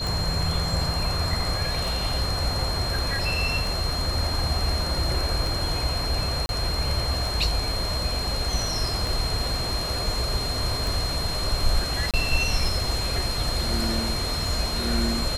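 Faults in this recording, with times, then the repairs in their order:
tick 33 1/3 rpm
tone 4200 Hz -29 dBFS
6.46–6.49 gap 31 ms
12.11–12.14 gap 27 ms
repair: de-click; notch 4200 Hz, Q 30; interpolate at 6.46, 31 ms; interpolate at 12.11, 27 ms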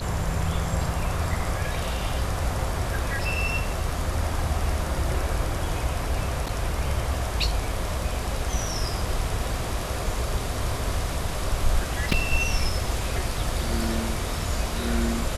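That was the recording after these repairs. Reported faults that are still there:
none

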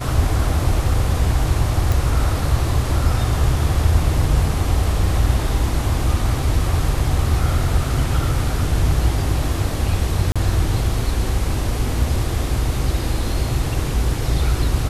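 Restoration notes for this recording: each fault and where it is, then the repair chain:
1.92 pop
10.32–10.36 gap 36 ms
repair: de-click; interpolate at 10.32, 36 ms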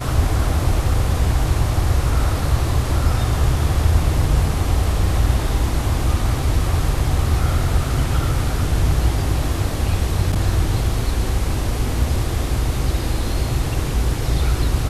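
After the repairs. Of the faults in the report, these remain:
none

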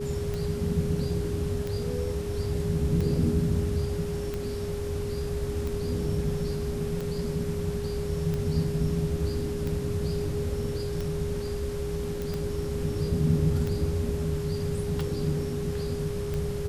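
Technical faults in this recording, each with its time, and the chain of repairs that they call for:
tick 45 rpm -20 dBFS
tone 410 Hz -32 dBFS
12.22 pop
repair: de-click; notch 410 Hz, Q 30

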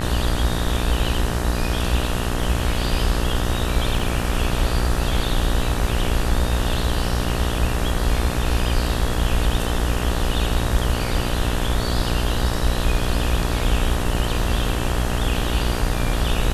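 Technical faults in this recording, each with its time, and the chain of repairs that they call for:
buzz 60 Hz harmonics 32 -25 dBFS
3.99 gap 2.7 ms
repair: de-hum 60 Hz, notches 32; interpolate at 3.99, 2.7 ms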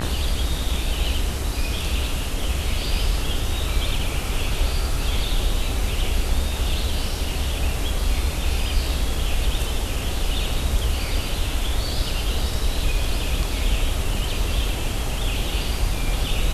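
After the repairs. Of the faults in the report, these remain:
none

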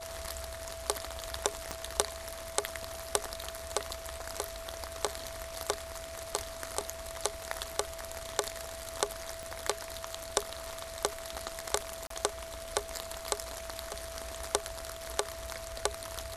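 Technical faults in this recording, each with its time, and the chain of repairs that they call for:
tone 660 Hz -43 dBFS
1.71 pop -19 dBFS
9.43 pop -25 dBFS
12.07–12.1 gap 33 ms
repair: de-click; notch 660 Hz, Q 30; interpolate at 12.07, 33 ms

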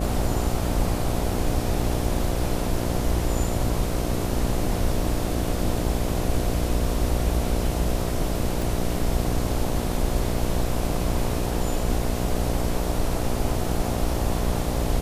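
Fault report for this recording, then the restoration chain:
buzz 60 Hz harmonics 12 -28 dBFS
8.62 pop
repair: de-click; de-hum 60 Hz, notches 12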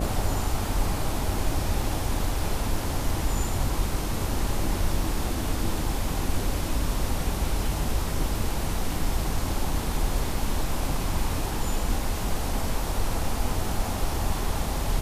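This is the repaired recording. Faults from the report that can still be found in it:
8.62 pop

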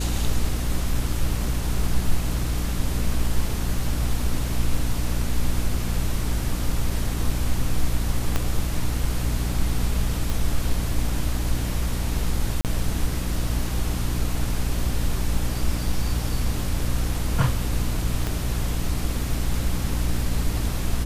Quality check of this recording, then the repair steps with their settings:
hum 60 Hz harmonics 5 -27 dBFS
8.36 pop -9 dBFS
10.3 pop
12.61–12.65 gap 38 ms
18.27 pop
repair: de-click; de-hum 60 Hz, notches 5; interpolate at 12.61, 38 ms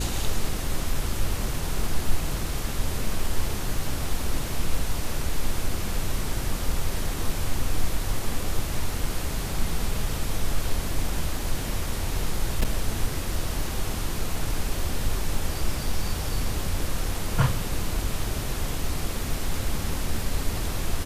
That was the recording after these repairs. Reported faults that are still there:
8.36 pop
18.27 pop

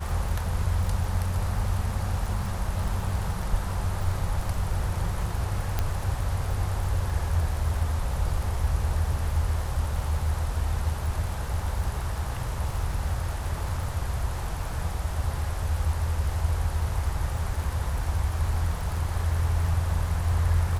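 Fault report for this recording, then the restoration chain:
crackle 37/s -32 dBFS
5.79 pop -12 dBFS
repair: de-click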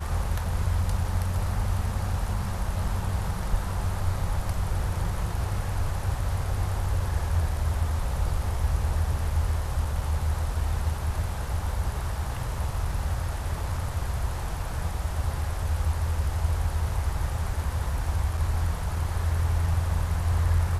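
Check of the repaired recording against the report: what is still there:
none

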